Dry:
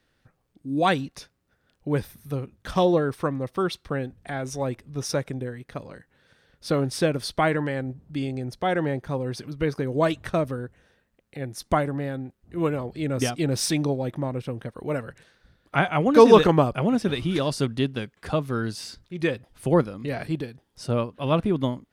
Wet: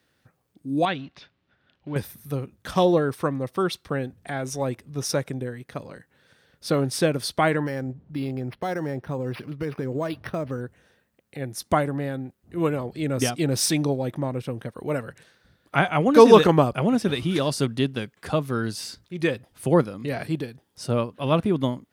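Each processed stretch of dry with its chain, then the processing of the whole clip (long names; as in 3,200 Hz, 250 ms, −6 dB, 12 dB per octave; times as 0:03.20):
0:00.85–0:01.96: mu-law and A-law mismatch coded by mu + transistor ladder low-pass 4,100 Hz, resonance 35% + notch filter 470 Hz, Q 5.7
0:07.66–0:10.61: downward compressor, threshold −24 dBFS + linearly interpolated sample-rate reduction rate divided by 6×
whole clip: high-pass filter 79 Hz; high-shelf EQ 9,300 Hz +7 dB; level +1 dB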